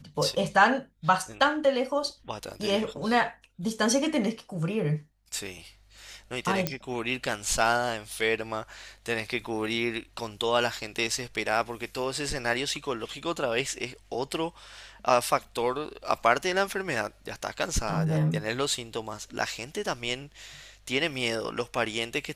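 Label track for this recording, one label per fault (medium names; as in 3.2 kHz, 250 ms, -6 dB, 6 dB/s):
6.670000	6.670000	pop -10 dBFS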